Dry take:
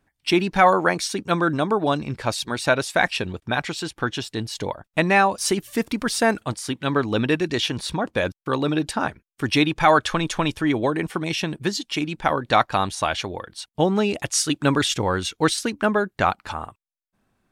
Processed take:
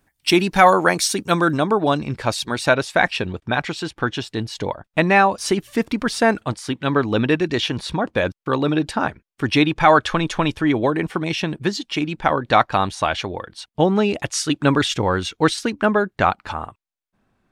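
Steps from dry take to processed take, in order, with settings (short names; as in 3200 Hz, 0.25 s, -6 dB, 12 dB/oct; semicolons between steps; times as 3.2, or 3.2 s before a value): high shelf 6800 Hz +9.5 dB, from 1.58 s -3 dB, from 2.74 s -11.5 dB; gain +3 dB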